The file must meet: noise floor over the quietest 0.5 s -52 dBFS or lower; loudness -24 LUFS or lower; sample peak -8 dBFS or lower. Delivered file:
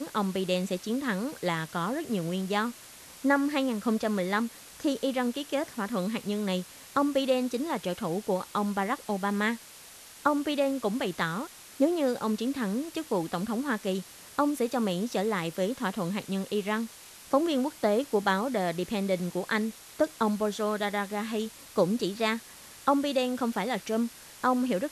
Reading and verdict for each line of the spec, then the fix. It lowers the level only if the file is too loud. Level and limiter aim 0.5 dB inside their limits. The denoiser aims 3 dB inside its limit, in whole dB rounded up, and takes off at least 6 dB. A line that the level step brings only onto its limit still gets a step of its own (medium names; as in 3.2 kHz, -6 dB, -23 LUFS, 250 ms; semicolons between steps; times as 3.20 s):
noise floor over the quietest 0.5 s -49 dBFS: fail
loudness -29.5 LUFS: pass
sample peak -11.0 dBFS: pass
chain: noise reduction 6 dB, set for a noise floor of -49 dBFS